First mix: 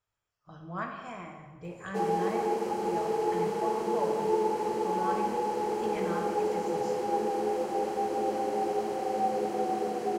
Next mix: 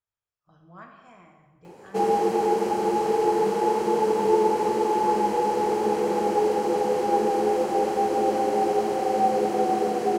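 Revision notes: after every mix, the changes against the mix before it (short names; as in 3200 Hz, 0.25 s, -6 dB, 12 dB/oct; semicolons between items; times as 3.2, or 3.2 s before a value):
speech -9.5 dB; background +7.0 dB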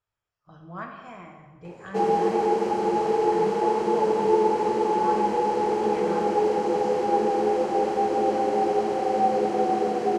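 speech +9.0 dB; master: add air absorption 59 m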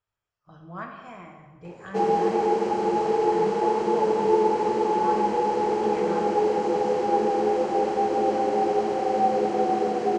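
background: add LPF 8700 Hz 24 dB/oct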